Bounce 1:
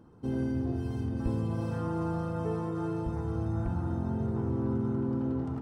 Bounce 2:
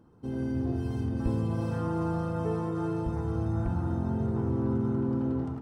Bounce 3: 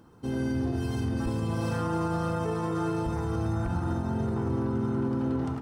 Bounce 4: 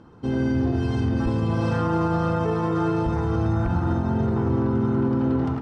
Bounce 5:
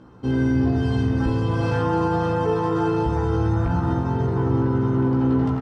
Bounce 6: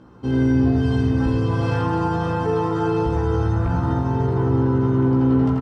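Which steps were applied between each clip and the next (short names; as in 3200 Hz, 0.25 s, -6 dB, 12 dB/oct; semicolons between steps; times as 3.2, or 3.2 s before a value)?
AGC gain up to 5 dB; gain -3 dB
tilt shelf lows -5 dB, about 1100 Hz; limiter -28.5 dBFS, peak gain reduction 8 dB; gain +7.5 dB
air absorption 120 m; gain +6.5 dB
doubler 16 ms -3 dB
echo 84 ms -8 dB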